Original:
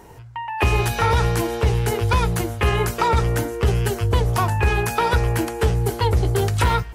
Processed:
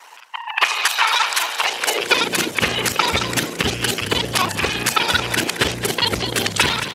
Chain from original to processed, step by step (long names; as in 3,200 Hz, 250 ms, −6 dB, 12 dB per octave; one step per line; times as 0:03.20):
reversed piece by piece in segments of 34 ms
meter weighting curve D
in parallel at 0 dB: brickwall limiter −10 dBFS, peak gain reduction 7 dB
on the sum: high-pass filter sweep 1,000 Hz → 110 Hz, 0:01.54–0:02.72
harmonic and percussive parts rebalanced harmonic −18 dB
on a send: echo with shifted repeats 220 ms, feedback 41%, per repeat +52 Hz, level −10 dB